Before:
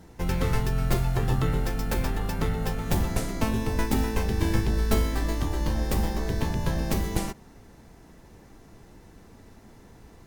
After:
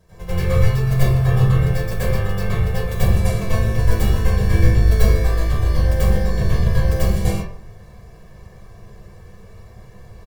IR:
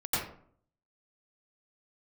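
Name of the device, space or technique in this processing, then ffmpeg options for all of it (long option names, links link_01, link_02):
microphone above a desk: -filter_complex "[0:a]aecho=1:1:1.8:0.89[link_01];[1:a]atrim=start_sample=2205[link_02];[link_01][link_02]afir=irnorm=-1:irlink=0,volume=-4.5dB"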